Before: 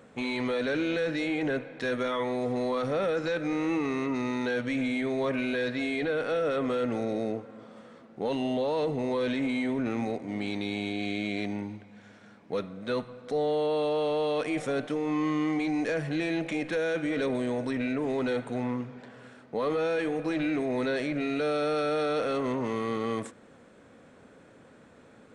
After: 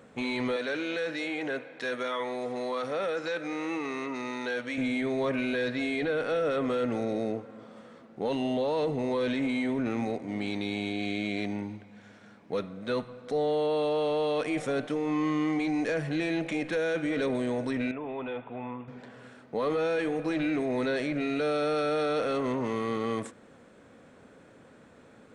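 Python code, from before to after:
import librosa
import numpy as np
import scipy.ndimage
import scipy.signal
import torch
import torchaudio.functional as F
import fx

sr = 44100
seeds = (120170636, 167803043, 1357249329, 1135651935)

y = fx.highpass(x, sr, hz=500.0, slope=6, at=(0.56, 4.78))
y = fx.cheby_ripple(y, sr, hz=3600.0, ripple_db=9, at=(17.91, 18.88))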